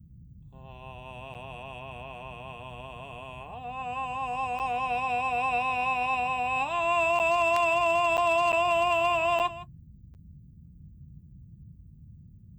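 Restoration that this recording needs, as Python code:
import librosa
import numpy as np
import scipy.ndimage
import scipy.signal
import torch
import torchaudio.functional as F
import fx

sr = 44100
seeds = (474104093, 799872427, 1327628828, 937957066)

y = fx.fix_declip(x, sr, threshold_db=-17.5)
y = fx.fix_interpolate(y, sr, at_s=(1.34, 4.59, 7.19, 8.17, 8.52, 9.39, 10.14), length_ms=8.6)
y = fx.noise_reduce(y, sr, print_start_s=9.75, print_end_s=10.25, reduce_db=23.0)
y = fx.fix_echo_inverse(y, sr, delay_ms=161, level_db=-15.5)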